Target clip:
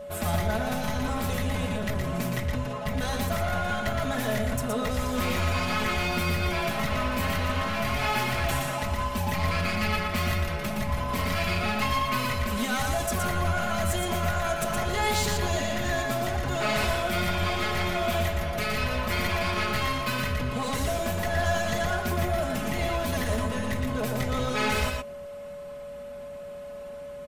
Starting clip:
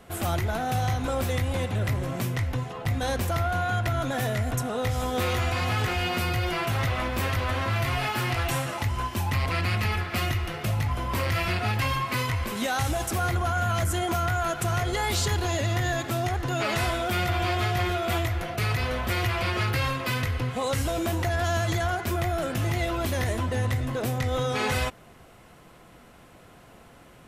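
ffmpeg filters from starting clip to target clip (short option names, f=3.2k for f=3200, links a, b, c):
-filter_complex "[0:a]aeval=exprs='clip(val(0),-1,0.0422)':c=same,aecho=1:1:4.7:0.95,asplit=2[a][b];[b]aecho=0:1:118:0.631[c];[a][c]amix=inputs=2:normalize=0,aeval=exprs='val(0)+0.02*sin(2*PI*570*n/s)':c=same,equalizer=f=90:t=o:w=0.94:g=7.5,bandreject=f=400:w=12,volume=-3dB"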